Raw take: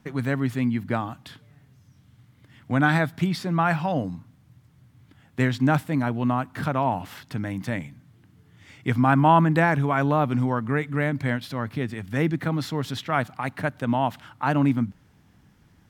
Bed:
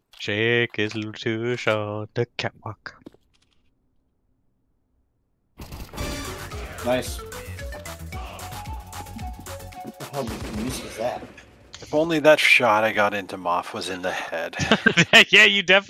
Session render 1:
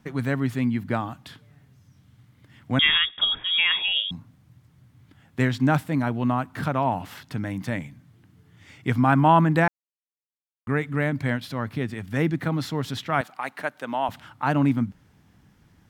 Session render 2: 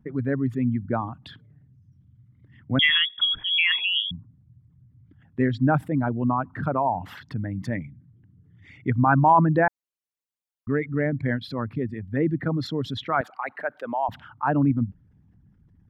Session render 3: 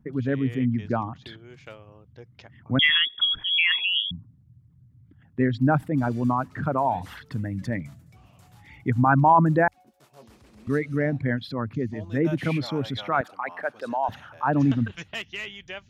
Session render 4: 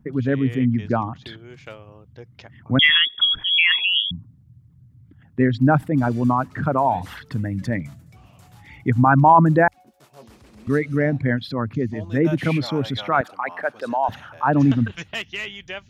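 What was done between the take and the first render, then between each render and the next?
2.79–4.11 s: frequency inversion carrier 3.5 kHz; 9.68–10.67 s: mute; 13.21–14.09 s: Bessel high-pass 480 Hz
resonances exaggerated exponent 2
add bed -22 dB
trim +4.5 dB; peak limiter -3 dBFS, peak gain reduction 1.5 dB

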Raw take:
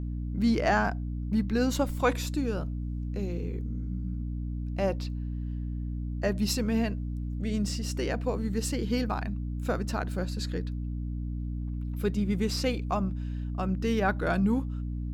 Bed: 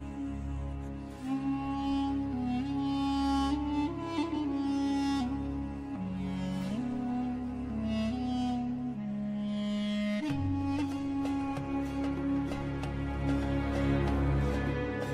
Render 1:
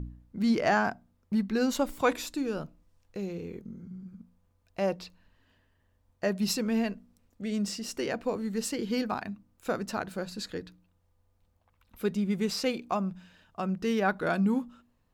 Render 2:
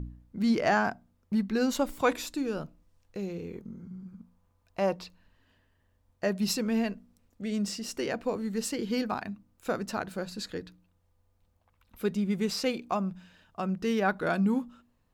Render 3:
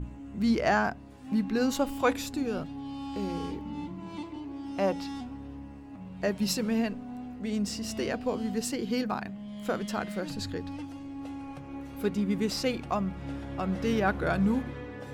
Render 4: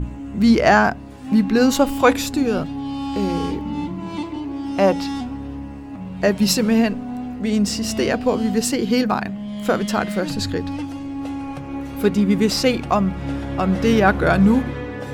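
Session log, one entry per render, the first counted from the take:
de-hum 60 Hz, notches 5
3.55–5.04 s: peaking EQ 1 kHz +5.5 dB 0.82 oct
add bed -7 dB
trim +11.5 dB; peak limiter -1 dBFS, peak gain reduction 0.5 dB

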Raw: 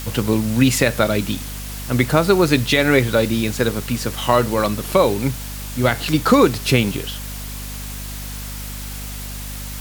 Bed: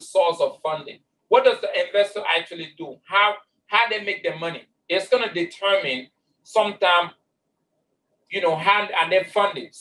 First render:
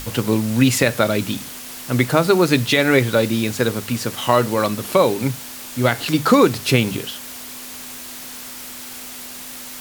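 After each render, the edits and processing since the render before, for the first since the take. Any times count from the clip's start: hum notches 50/100/150/200 Hz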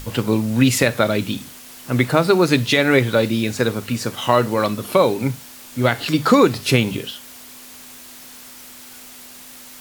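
noise print and reduce 6 dB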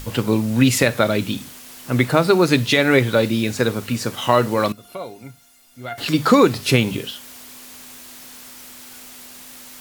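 4.72–5.98 s: feedback comb 700 Hz, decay 0.15 s, mix 90%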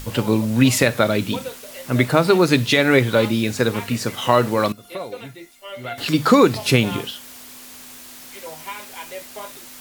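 add bed -16 dB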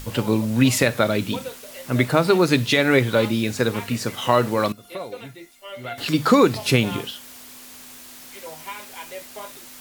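trim -2 dB

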